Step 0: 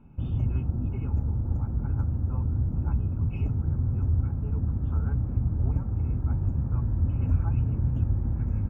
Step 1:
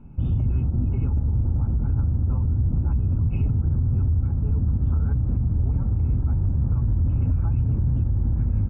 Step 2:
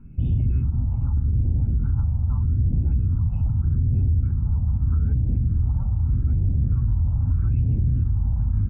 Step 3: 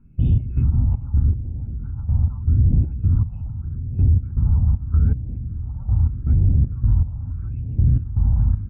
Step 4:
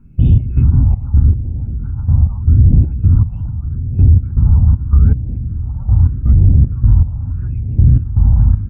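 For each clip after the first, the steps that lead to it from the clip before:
tilt EQ -1.5 dB/octave; peak limiter -18 dBFS, peak gain reduction 10.5 dB; trim +3 dB
phase shifter stages 4, 0.81 Hz, lowest notch 370–1200 Hz
trance gate ".x.xx.x..." 79 bpm -12 dB; trim +5 dB
warped record 45 rpm, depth 160 cents; trim +7.5 dB

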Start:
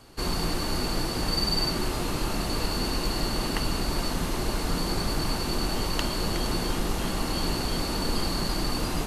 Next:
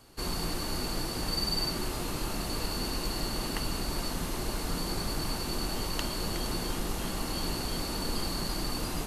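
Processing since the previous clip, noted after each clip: treble shelf 7.9 kHz +6.5 dB; trim -5.5 dB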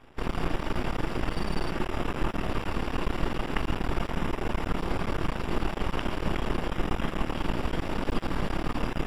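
half-wave rectifier; Savitzky-Golay filter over 25 samples; trim +8.5 dB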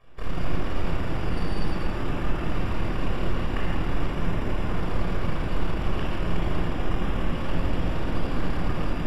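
simulated room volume 3500 m³, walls mixed, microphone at 5.8 m; trim -8 dB

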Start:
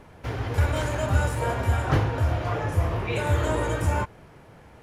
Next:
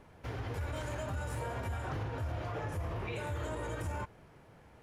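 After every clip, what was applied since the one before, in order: peak limiter -21 dBFS, peak gain reduction 11 dB; trim -8.5 dB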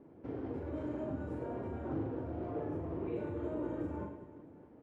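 band-pass filter 300 Hz, Q 2.5; reverse bouncing-ball echo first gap 40 ms, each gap 1.6×, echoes 5; trim +8 dB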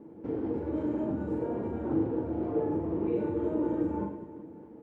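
small resonant body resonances 210/320/450/860 Hz, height 10 dB, ringing for 60 ms; trim +2 dB

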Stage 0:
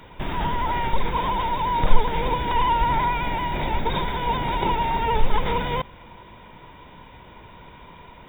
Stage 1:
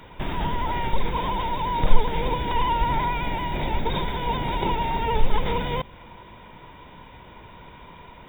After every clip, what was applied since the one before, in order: dynamic bell 1.3 kHz, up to -4 dB, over -34 dBFS, Q 0.86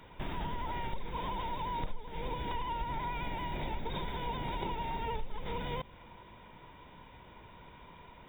compression 12:1, threshold -23 dBFS, peak gain reduction 18 dB; trim -8.5 dB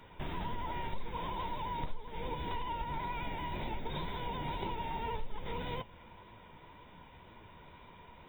flange 1.9 Hz, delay 8.1 ms, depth 5.8 ms, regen +57%; trim +3 dB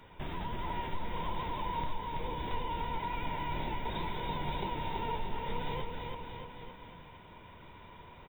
bouncing-ball echo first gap 330 ms, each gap 0.9×, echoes 5

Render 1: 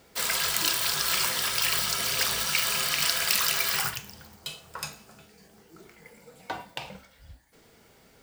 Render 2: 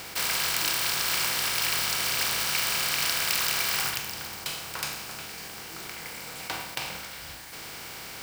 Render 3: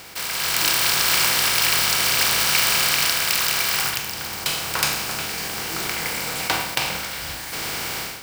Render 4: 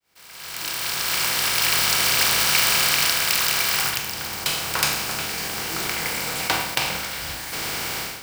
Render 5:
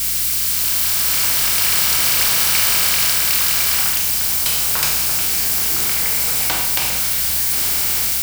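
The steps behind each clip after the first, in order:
spectral levelling over time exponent 0.4; trim -6 dB
level rider gain up to 14 dB; trim -1 dB
fade-in on the opening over 1.93 s
zero-crossing glitches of -12.5 dBFS; hum 60 Hz, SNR 21 dB; trim -1.5 dB

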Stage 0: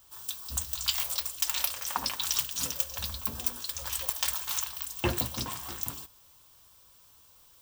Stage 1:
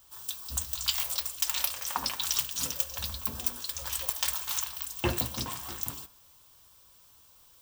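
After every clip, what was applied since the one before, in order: de-hum 99.04 Hz, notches 28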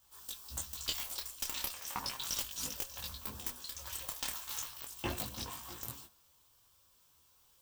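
valve stage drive 14 dB, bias 0.7; detune thickener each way 13 cents

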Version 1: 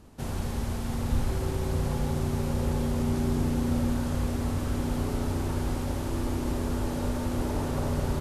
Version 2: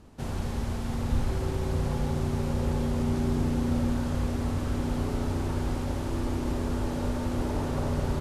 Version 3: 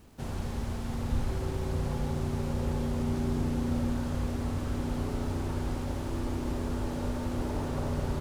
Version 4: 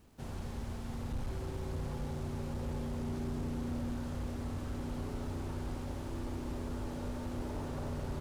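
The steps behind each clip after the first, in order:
treble shelf 11 kHz -11.5 dB
bit crusher 10-bit; trim -3 dB
overload inside the chain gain 25.5 dB; trim -6.5 dB

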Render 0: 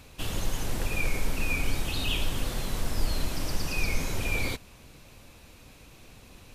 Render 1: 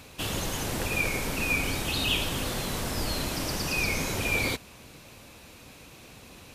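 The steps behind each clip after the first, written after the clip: high-pass 120 Hz 6 dB/octave; trim +4.5 dB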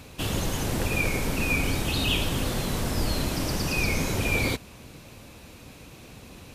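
bass shelf 440 Hz +6 dB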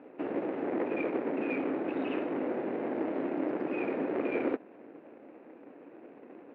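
median filter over 41 samples; Chebyshev band-pass 300–2300 Hz, order 3; trim +4.5 dB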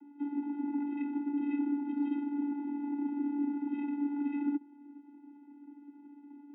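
vocoder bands 16, square 287 Hz

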